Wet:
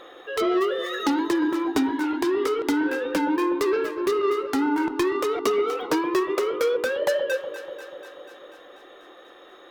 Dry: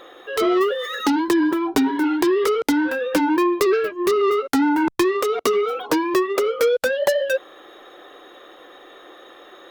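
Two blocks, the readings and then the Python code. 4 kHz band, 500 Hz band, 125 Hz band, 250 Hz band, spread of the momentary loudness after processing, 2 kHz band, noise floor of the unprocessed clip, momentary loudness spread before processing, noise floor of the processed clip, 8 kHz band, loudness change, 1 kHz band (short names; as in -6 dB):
-4.0 dB, -4.0 dB, n/a, -4.0 dB, 11 LU, -4.0 dB, -46 dBFS, 4 LU, -48 dBFS, -5.5 dB, -4.0 dB, -4.0 dB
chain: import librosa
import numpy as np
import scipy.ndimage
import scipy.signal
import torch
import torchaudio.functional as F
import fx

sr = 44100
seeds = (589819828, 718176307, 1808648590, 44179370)

p1 = fx.high_shelf(x, sr, hz=11000.0, db=-6.5)
p2 = fx.rider(p1, sr, range_db=4, speed_s=0.5)
p3 = p2 + fx.echo_alternate(p2, sr, ms=122, hz=870.0, feedback_pct=82, wet_db=-10.5, dry=0)
y = p3 * 10.0 ** (-4.5 / 20.0)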